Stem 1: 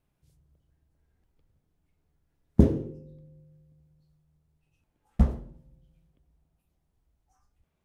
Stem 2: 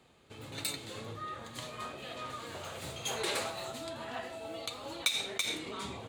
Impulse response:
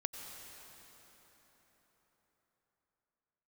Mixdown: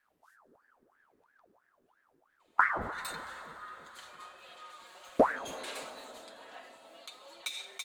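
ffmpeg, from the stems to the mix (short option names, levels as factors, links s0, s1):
-filter_complex "[0:a]aeval=exprs='val(0)*sin(2*PI*1000*n/s+1000*0.7/3*sin(2*PI*3*n/s))':c=same,volume=1.19,asplit=2[s0][s1];[s1]volume=0.266[s2];[1:a]highpass=620,aecho=1:1:5.5:0.75,adelay=2400,volume=0.251,asplit=2[s3][s4];[s4]volume=0.335[s5];[2:a]atrim=start_sample=2205[s6];[s2][s5]amix=inputs=2:normalize=0[s7];[s7][s6]afir=irnorm=-1:irlink=0[s8];[s0][s3][s8]amix=inputs=3:normalize=0,alimiter=limit=0.316:level=0:latency=1:release=405"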